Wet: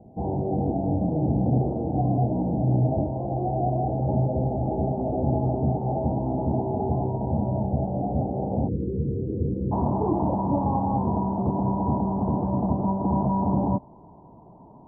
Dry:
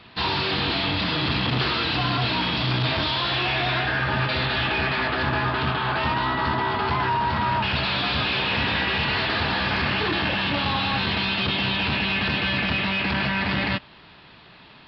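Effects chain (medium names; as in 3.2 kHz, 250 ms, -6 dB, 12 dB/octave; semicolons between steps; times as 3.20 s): rippled Chebyshev low-pass 810 Hz, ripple 3 dB, from 8.67 s 500 Hz, from 9.71 s 1 kHz; trim +5 dB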